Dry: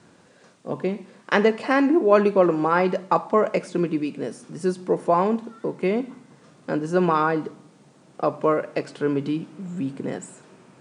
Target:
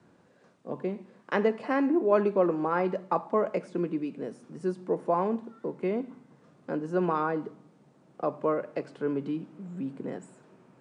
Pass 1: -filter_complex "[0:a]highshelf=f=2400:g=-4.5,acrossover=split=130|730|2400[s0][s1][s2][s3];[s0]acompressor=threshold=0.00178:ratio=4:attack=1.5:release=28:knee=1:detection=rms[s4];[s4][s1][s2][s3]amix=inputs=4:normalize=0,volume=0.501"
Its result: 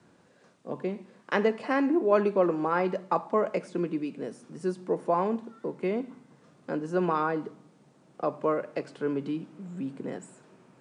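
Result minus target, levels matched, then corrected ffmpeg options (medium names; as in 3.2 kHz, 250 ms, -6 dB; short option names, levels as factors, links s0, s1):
4 kHz band +4.0 dB
-filter_complex "[0:a]highshelf=f=2400:g=-11,acrossover=split=130|730|2400[s0][s1][s2][s3];[s0]acompressor=threshold=0.00178:ratio=4:attack=1.5:release=28:knee=1:detection=rms[s4];[s4][s1][s2][s3]amix=inputs=4:normalize=0,volume=0.501"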